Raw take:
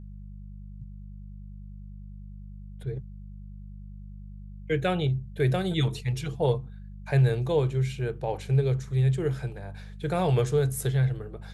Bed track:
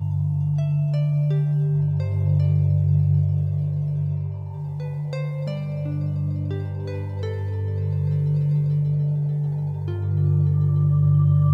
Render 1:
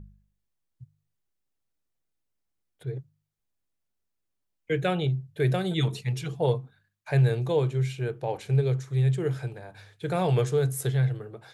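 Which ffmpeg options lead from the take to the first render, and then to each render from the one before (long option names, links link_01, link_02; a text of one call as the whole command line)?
ffmpeg -i in.wav -af "bandreject=frequency=50:width_type=h:width=4,bandreject=frequency=100:width_type=h:width=4,bandreject=frequency=150:width_type=h:width=4,bandreject=frequency=200:width_type=h:width=4" out.wav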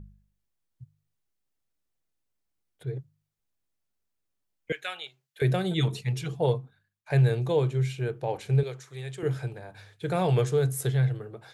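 ffmpeg -i in.wav -filter_complex "[0:a]asettb=1/sr,asplit=3[link_01][link_02][link_03];[link_01]atrim=end=4.724[link_04];[link_02]atrim=start=4.72:end=5.42,asetpts=PTS-STARTPTS,afade=type=in:duration=0.004:curve=qsin,afade=type=out:start_time=0.696:duration=0.004:curve=qsin,highpass=1400[link_05];[link_03]atrim=start=5.416[link_06];[link_04][link_05]acrossfade=duration=0.004:curve1=hsin:curve2=qsin[link_07];[link_07][link_06]acrossfade=duration=0.004:curve1=qsin:curve2=hsin,asettb=1/sr,asplit=3[link_08][link_09][link_10];[link_08]atrim=end=8.634[link_11];[link_09]atrim=start=8.63:end=9.23,asetpts=PTS-STARTPTS,afade=type=in:duration=0.004:curve=qsin,afade=type=out:start_time=0.596:duration=0.004:curve=qsin,highpass=frequency=790:poles=1[link_12];[link_10]atrim=start=9.226[link_13];[link_11][link_12]acrossfade=duration=0.004:curve1=hsin:curve2=qsin[link_14];[link_14][link_13]acrossfade=duration=0.004:curve1=qsin:curve2=hsin,asplit=2[link_15][link_16];[link_15]atrim=end=7.1,asetpts=PTS-STARTPTS,afade=type=out:start_time=6.44:duration=0.66:silence=0.398107[link_17];[link_16]atrim=start=7.1,asetpts=PTS-STARTPTS,afade=type=in:duration=0.004:curve=hsin:silence=0.398107[link_18];[link_17][link_18]concat=n=2:v=0:a=1" out.wav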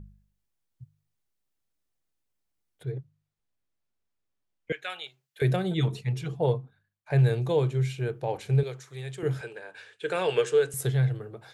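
ffmpeg -i in.wav -filter_complex "[0:a]asettb=1/sr,asplit=3[link_01][link_02][link_03];[link_01]atrim=end=2.924[link_04];[link_02]atrim=start=2.92:end=4.9,asetpts=PTS-STARTPTS,afade=type=in:duration=0.004:curve=qsin,afade=type=out:start_time=1.976:duration=0.004:curve=qsin,lowpass=frequency=4000:poles=1[link_05];[link_03]atrim=start=4.896[link_06];[link_04][link_05]acrossfade=duration=0.004:curve1=hsin:curve2=qsin[link_07];[link_07][link_06]acrossfade=duration=0.004:curve1=qsin:curve2=hsin,asettb=1/sr,asplit=3[link_08][link_09][link_10];[link_08]atrim=end=5.564[link_11];[link_09]atrim=start=5.56:end=7.19,asetpts=PTS-STARTPTS,afade=type=in:duration=0.004:curve=qsin,afade=type=out:start_time=1.626:duration=0.004:curve=qsin,highshelf=frequency=2600:gain=-6.5[link_12];[link_10]atrim=start=7.186[link_13];[link_11][link_12]acrossfade=duration=0.004:curve1=hsin:curve2=qsin[link_14];[link_14][link_13]acrossfade=duration=0.004:curve1=qsin:curve2=hsin,asettb=1/sr,asplit=3[link_15][link_16][link_17];[link_15]atrim=end=9.414[link_18];[link_16]atrim=start=9.41:end=10.74,asetpts=PTS-STARTPTS,afade=type=in:duration=0.004:curve=qsin,afade=type=out:start_time=1.326:duration=0.004:curve=qsin,highpass=370,equalizer=frequency=450:width_type=q:width=4:gain=6,equalizer=frequency=720:width_type=q:width=4:gain=-6,equalizer=frequency=1600:width_type=q:width=4:gain=7,equalizer=frequency=2800:width_type=q:width=4:gain=10,equalizer=frequency=8000:width_type=q:width=4:gain=4,lowpass=frequency=9900:width=0.5412,lowpass=frequency=9900:width=1.3066[link_19];[link_17]atrim=start=10.736[link_20];[link_18][link_19]acrossfade=duration=0.004:curve1=hsin:curve2=qsin[link_21];[link_21][link_20]acrossfade=duration=0.004:curve1=qsin:curve2=hsin" out.wav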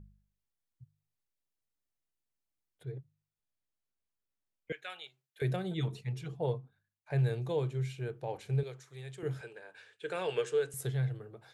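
ffmpeg -i in.wav -af "volume=-8dB" out.wav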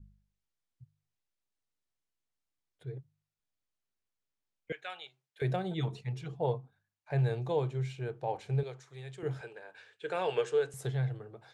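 ffmpeg -i in.wav -af "lowpass=7800,adynamicequalizer=threshold=0.00282:dfrequency=800:dqfactor=1.6:tfrequency=800:tqfactor=1.6:attack=5:release=100:ratio=0.375:range=3.5:mode=boostabove:tftype=bell" out.wav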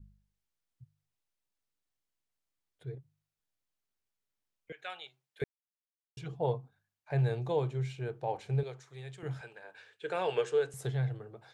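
ffmpeg -i in.wav -filter_complex "[0:a]asettb=1/sr,asplit=3[link_01][link_02][link_03];[link_01]atrim=end=2.954[link_04];[link_02]atrim=start=2.95:end=4.8,asetpts=PTS-STARTPTS,afade=type=in:duration=0.004:curve=qsin,afade=type=out:start_time=1.846:duration=0.004:curve=qsin,acompressor=threshold=-53dB:ratio=1.5:attack=3.2:release=140:knee=1:detection=peak[link_05];[link_03]atrim=start=4.796[link_06];[link_04][link_05]acrossfade=duration=0.004:curve1=hsin:curve2=qsin[link_07];[link_07][link_06]acrossfade=duration=0.004:curve1=qsin:curve2=hsin,asettb=1/sr,asplit=3[link_08][link_09][link_10];[link_08]atrim=end=9.174[link_11];[link_09]atrim=start=9.17:end=9.64,asetpts=PTS-STARTPTS,afade=type=in:duration=0.004:curve=qsin,afade=type=out:start_time=0.466:duration=0.004:curve=qsin,equalizer=frequency=410:width_type=o:width=0.8:gain=-8[link_12];[link_10]atrim=start=9.636[link_13];[link_11][link_12]acrossfade=duration=0.004:curve1=hsin:curve2=qsin[link_14];[link_14][link_13]acrossfade=duration=0.004:curve1=qsin:curve2=hsin,asplit=3[link_15][link_16][link_17];[link_15]atrim=end=5.44,asetpts=PTS-STARTPTS,afade=type=out:start_time=5.436:duration=0.004:curve=hsin[link_18];[link_16]atrim=start=5.44:end=6.17,asetpts=PTS-STARTPTS,volume=0[link_19];[link_17]atrim=start=6.17,asetpts=PTS-STARTPTS,afade=type=in:duration=0.004:curve=hsin[link_20];[link_18][link_19][link_20]concat=n=3:v=0:a=1" out.wav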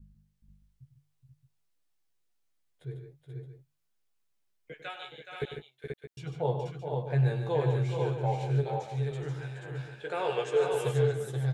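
ffmpeg -i in.wav -filter_complex "[0:a]asplit=2[link_01][link_02];[link_02]adelay=14,volume=-5dB[link_03];[link_01][link_03]amix=inputs=2:normalize=0,asplit=2[link_04][link_05];[link_05]aecho=0:1:98|147|167|422|483|620:0.299|0.398|0.126|0.422|0.596|0.251[link_06];[link_04][link_06]amix=inputs=2:normalize=0" out.wav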